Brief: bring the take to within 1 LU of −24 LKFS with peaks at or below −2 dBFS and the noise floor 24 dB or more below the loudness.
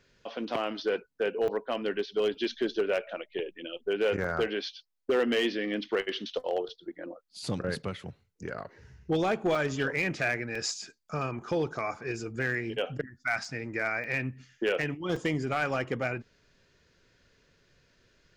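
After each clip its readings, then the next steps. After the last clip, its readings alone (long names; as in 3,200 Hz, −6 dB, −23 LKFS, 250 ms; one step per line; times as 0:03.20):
share of clipped samples 0.4%; peaks flattened at −20.5 dBFS; number of dropouts 8; longest dropout 4.0 ms; integrated loudness −31.5 LKFS; sample peak −20.5 dBFS; target loudness −24.0 LKFS
→ clipped peaks rebuilt −20.5 dBFS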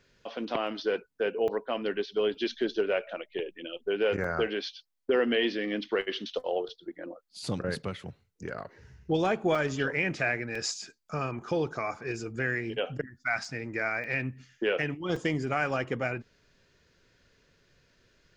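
share of clipped samples 0.0%; number of dropouts 8; longest dropout 4.0 ms
→ repair the gap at 0:00.67/0:01.48/0:04.24/0:09.55/0:10.55/0:13.45/0:14.04/0:15.16, 4 ms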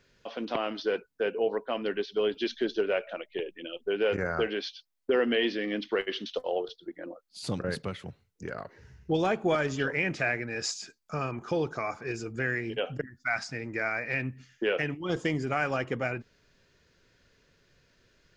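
number of dropouts 0; integrated loudness −31.0 LKFS; sample peak −14.5 dBFS; target loudness −24.0 LKFS
→ level +7 dB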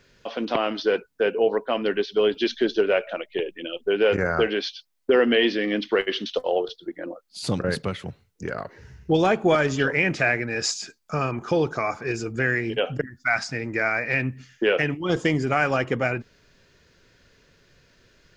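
integrated loudness −24.0 LKFS; sample peak −7.5 dBFS; background noise floor −61 dBFS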